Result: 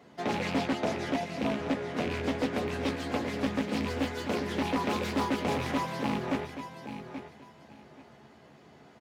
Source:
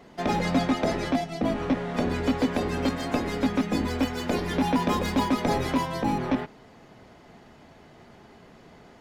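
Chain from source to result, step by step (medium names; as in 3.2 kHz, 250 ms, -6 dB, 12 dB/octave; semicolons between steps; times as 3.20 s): rattle on loud lows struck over -27 dBFS, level -21 dBFS; high-pass 78 Hz 24 dB/octave; doubling 14 ms -6 dB; feedback delay 830 ms, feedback 21%, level -10 dB; loudspeaker Doppler distortion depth 0.39 ms; trim -5.5 dB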